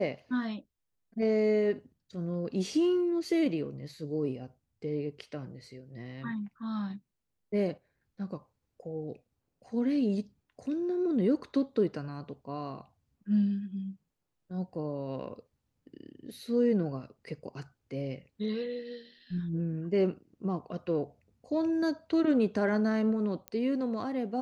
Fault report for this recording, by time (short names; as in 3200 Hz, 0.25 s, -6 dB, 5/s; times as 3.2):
23.48 pop -23 dBFS